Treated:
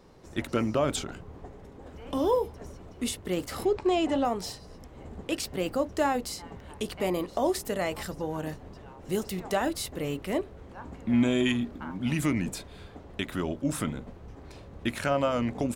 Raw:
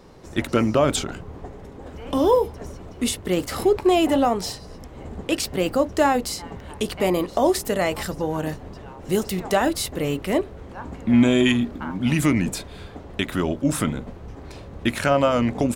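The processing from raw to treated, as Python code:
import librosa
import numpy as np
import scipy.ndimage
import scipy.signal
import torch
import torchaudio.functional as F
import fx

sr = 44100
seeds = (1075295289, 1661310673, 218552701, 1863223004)

y = fx.lowpass(x, sr, hz=7700.0, slope=24, at=(3.65, 4.25))
y = y * librosa.db_to_amplitude(-7.5)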